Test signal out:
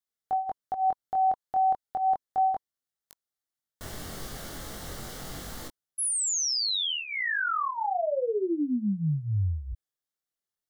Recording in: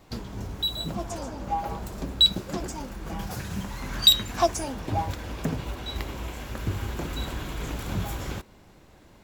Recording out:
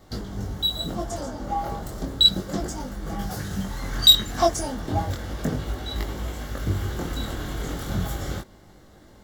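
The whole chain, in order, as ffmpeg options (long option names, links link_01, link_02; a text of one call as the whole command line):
ffmpeg -i in.wav -af "equalizer=frequency=2500:width=6.8:gain=-15,bandreject=frequency=980:width=8.4,flanger=delay=19.5:depth=4.4:speed=0.33,volume=6dB" out.wav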